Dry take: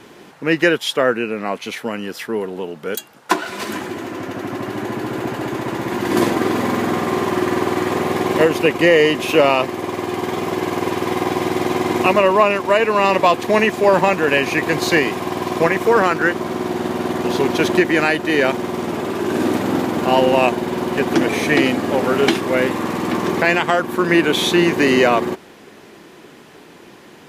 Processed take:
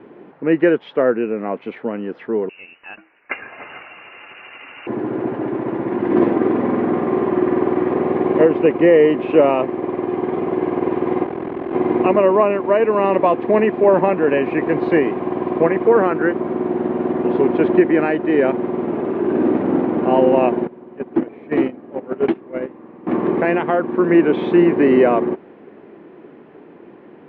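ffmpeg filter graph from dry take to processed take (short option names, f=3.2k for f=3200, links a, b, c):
-filter_complex "[0:a]asettb=1/sr,asplit=3[a][b][c];[a]atrim=end=2.494[d];[b]atrim=start=2.49:end=4.87,asetpts=PTS-STARTPTS,afade=t=in:d=0.004:c=qsin,afade=t=out:st=2.376:d=0.004:c=qsin,highpass=f=350:p=1,lowpass=f=2.6k:t=q:w=0.5098,lowpass=f=2.6k:t=q:w=0.6013,lowpass=f=2.6k:t=q:w=0.9,lowpass=f=2.6k:t=q:w=2.563,afreqshift=-3100[e];[c]atrim=start=4.866[f];[d][e]acrossfade=d=0.004:c1=hsin:c2=qsin[g];[g][f]acrossfade=d=0.004:c1=qsin:c2=hsin,asettb=1/sr,asplit=3[h][i][j];[h]atrim=end=11.254[k];[i]atrim=start=11.25:end=11.73,asetpts=PTS-STARTPTS,afade=t=in:d=0.004:c=qsin,afade=t=out:st=0.476:d=0.004:c=qsin,volume=21dB,asoftclip=hard,volume=-21dB,aeval=exprs='val(0)*sin(2*PI*21*n/s)':c=same[l];[j]atrim=start=11.726[m];[k][l]acrossfade=d=0.004:c1=hsin:c2=qsin[n];[n][m]acrossfade=d=0.004:c1=qsin:c2=hsin,asettb=1/sr,asplit=3[o][p][q];[o]atrim=end=20.674[r];[p]atrim=start=20.67:end=23.07,asetpts=PTS-STARTPTS,afade=t=in:d=0.004:c=qsin,afade=t=out:st=2.396:d=0.004:c=qsin,agate=range=-19dB:threshold=-15dB:ratio=16:release=100:detection=peak,asoftclip=type=hard:threshold=-12dB[s];[q]atrim=start=23.066[t];[r][s]acrossfade=d=0.004:c1=hsin:c2=qsin[u];[u][t]acrossfade=d=0.004:c1=qsin:c2=hsin,lowpass=f=2.6k:w=0.5412,lowpass=f=2.6k:w=1.3066,equalizer=f=350:w=0.41:g=13.5,volume=-10.5dB"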